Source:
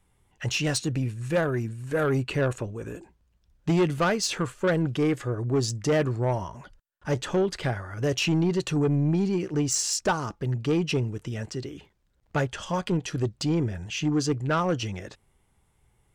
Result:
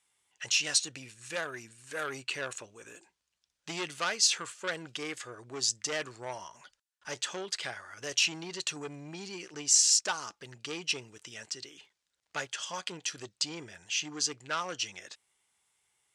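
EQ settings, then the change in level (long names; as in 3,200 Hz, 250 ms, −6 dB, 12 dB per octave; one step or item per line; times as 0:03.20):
meter weighting curve ITU-R 468
−8.0 dB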